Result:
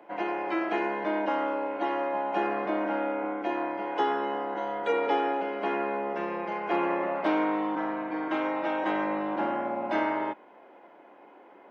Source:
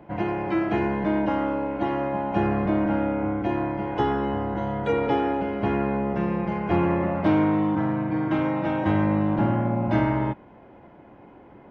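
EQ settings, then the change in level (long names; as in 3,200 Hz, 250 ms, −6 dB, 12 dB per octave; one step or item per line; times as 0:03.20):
Bessel high-pass filter 460 Hz, order 4
0.0 dB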